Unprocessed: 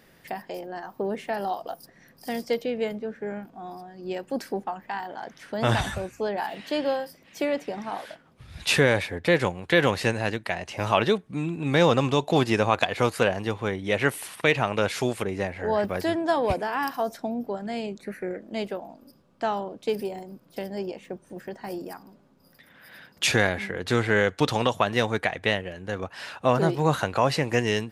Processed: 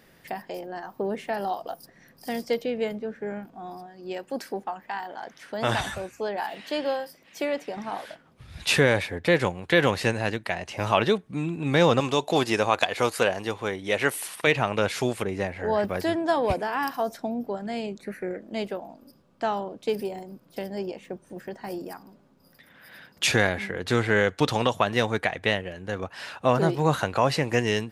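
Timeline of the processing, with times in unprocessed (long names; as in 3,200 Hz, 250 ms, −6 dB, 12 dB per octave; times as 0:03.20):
0:03.86–0:07.77: low-shelf EQ 240 Hz −8 dB
0:12.00–0:14.47: bass and treble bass −7 dB, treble +4 dB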